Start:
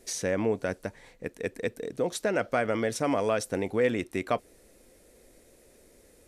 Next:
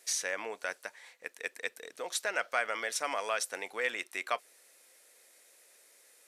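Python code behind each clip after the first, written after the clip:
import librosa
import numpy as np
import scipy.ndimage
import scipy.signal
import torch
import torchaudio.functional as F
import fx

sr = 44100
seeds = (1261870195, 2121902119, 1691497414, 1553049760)

y = scipy.signal.sosfilt(scipy.signal.butter(2, 1100.0, 'highpass', fs=sr, output='sos'), x)
y = F.gain(torch.from_numpy(y), 2.0).numpy()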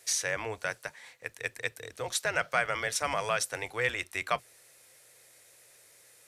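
y = fx.octave_divider(x, sr, octaves=2, level_db=0.0)
y = F.gain(torch.from_numpy(y), 3.0).numpy()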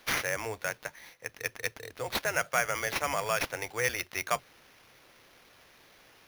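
y = fx.sample_hold(x, sr, seeds[0], rate_hz=8000.0, jitter_pct=0)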